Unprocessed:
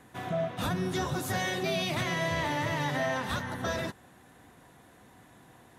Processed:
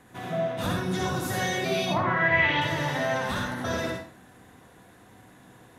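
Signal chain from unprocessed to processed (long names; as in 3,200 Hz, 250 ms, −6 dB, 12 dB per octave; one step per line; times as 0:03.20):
0:01.85–0:02.60: low-pass with resonance 830 Hz → 3,600 Hz, resonance Q 4.1
convolution reverb RT60 0.50 s, pre-delay 55 ms, DRR 0 dB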